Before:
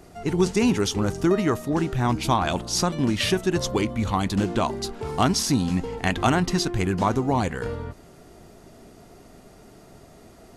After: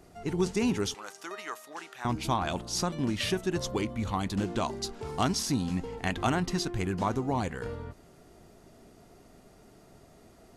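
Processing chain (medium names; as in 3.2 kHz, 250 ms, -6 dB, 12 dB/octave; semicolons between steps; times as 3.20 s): 0.94–2.05 s: high-pass 970 Hz 12 dB/octave; 4.49–5.35 s: dynamic bell 5.9 kHz, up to +5 dB, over -47 dBFS, Q 1; trim -7 dB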